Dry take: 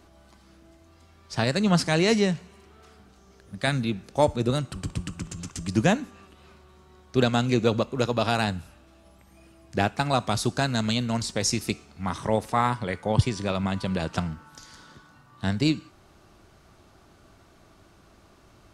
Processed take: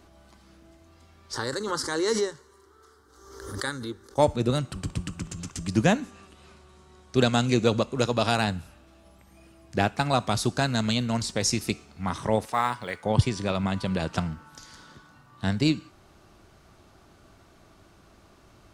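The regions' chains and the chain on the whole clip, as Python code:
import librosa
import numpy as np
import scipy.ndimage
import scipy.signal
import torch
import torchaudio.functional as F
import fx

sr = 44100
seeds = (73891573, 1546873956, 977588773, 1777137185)

y = fx.chain(x, sr, fx.low_shelf(hz=210.0, db=-8.0),
    fx.fixed_phaser(hz=680.0, stages=6),
    fx.pre_swell(db_per_s=53.0), at=(1.33, 4.18))
y = fx.chain(y, sr, fx.lowpass(hz=10000.0, slope=24),
    fx.high_shelf(hz=7800.0, db=11.5), at=(6.02, 8.36))
y = fx.chain(y, sr, fx.low_shelf(hz=370.0, db=-11.5),
    fx.quant_float(bits=4), at=(12.45, 13.04))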